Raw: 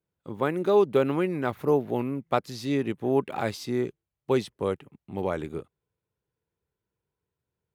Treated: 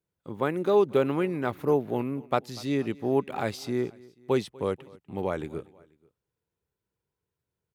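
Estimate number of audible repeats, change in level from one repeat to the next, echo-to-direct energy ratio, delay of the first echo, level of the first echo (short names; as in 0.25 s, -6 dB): 2, -5.0 dB, -22.0 dB, 0.243 s, -23.0 dB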